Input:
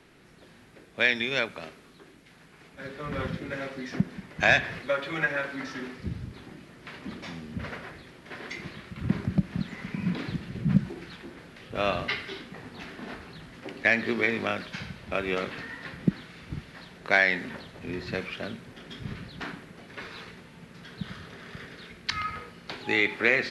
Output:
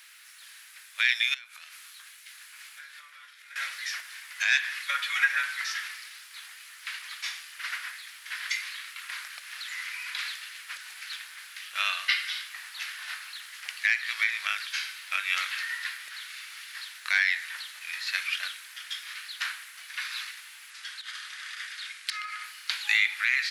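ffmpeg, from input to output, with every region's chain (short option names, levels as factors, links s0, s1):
-filter_complex "[0:a]asettb=1/sr,asplit=3[s0][s1][s2];[s0]atrim=end=1.344[s3];[s1]atrim=start=1.34:end=3.56,asetpts=PTS-STARTPTS,afade=t=in:d=0.004:c=qsin,afade=t=out:st=2.216:d=0.004:c=qsin,acompressor=threshold=0.00562:ratio=20:attack=3.2:release=140:knee=1:detection=peak,asplit=2[s4][s5];[s5]adelay=26,volume=0.299[s6];[s4][s6]amix=inputs=2:normalize=0,atrim=end_sample=97902[s7];[s2]atrim=start=3.556[s8];[s3][s7]acrossfade=d=0.004:c1=hsin:c2=qsin[s9];[s9][s8]acrossfade=d=0.004:c1=qsin:c2=hsin,asettb=1/sr,asplit=3[s10][s11][s12];[s10]atrim=end=20.704[s13];[s11]atrim=start=20.7:end=22.44,asetpts=PTS-STARTPTS,afade=t=in:d=0.004:c=qsin,afade=t=out:st=1.736:d=0.004:c=qsin,volume=11.9,asoftclip=hard,volume=0.0841,lowpass=f=10000:w=0.5412,lowpass=f=10000:w=1.3066,acompressor=threshold=0.0158:ratio=12:attack=3.2:release=140:knee=1:detection=peak[s14];[s12]atrim=start=22.436[s15];[s13][s14]acrossfade=d=0.004:c1=hsin:c2=qsin[s16];[s16][s15]acrossfade=d=0.004:c1=qsin:c2=hsin,aemphasis=mode=production:type=bsi,alimiter=limit=0.15:level=0:latency=1:release=354,highpass=f=1400:w=0.5412,highpass=f=1400:w=1.3066,volume=2.11"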